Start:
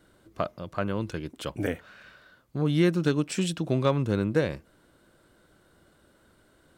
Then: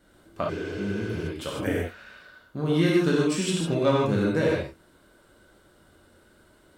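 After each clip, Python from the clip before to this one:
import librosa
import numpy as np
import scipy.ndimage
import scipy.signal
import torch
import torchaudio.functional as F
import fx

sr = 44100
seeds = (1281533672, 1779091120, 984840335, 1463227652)

y = fx.rev_gated(x, sr, seeds[0], gate_ms=180, shape='flat', drr_db=-4.5)
y = fx.spec_repair(y, sr, seeds[1], start_s=0.52, length_s=0.72, low_hz=250.0, high_hz=9500.0, source='after')
y = y * 10.0 ** (-2.0 / 20.0)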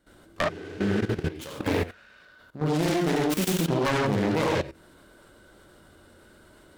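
y = fx.self_delay(x, sr, depth_ms=0.74)
y = fx.level_steps(y, sr, step_db=15)
y = y * 10.0 ** (6.0 / 20.0)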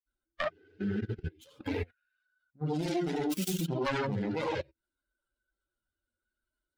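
y = fx.bin_expand(x, sr, power=2.0)
y = y * 10.0 ** (-3.0 / 20.0)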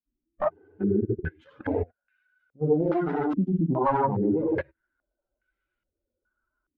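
y = fx.filter_held_lowpass(x, sr, hz=2.4, low_hz=270.0, high_hz=2300.0)
y = y * 10.0 ** (4.0 / 20.0)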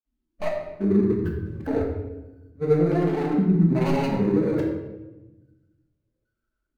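y = scipy.signal.medfilt(x, 41)
y = fx.room_shoebox(y, sr, seeds[2], volume_m3=530.0, walls='mixed', distance_m=1.5)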